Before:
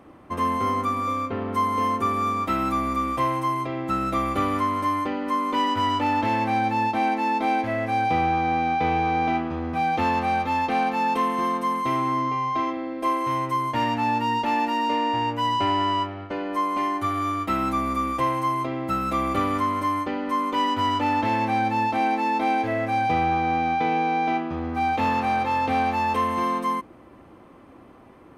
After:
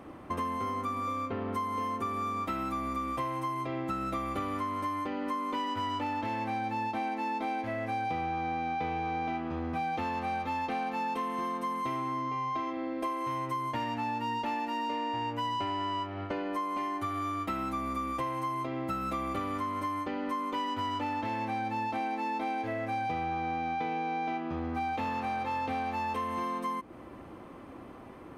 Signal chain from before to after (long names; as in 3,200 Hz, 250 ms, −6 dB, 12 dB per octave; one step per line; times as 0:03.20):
downward compressor, threshold −33 dBFS, peak gain reduction 13 dB
level +1.5 dB